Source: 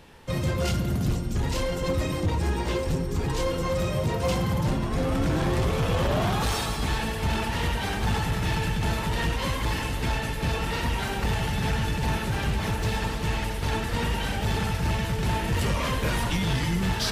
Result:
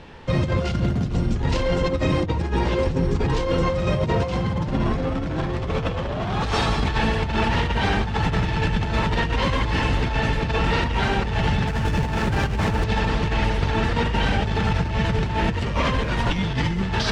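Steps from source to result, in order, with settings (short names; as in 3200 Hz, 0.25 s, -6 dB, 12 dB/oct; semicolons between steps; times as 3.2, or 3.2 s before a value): negative-ratio compressor -27 dBFS, ratio -0.5; air absorption 130 m; 11.67–12.84 running maximum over 5 samples; gain +6.5 dB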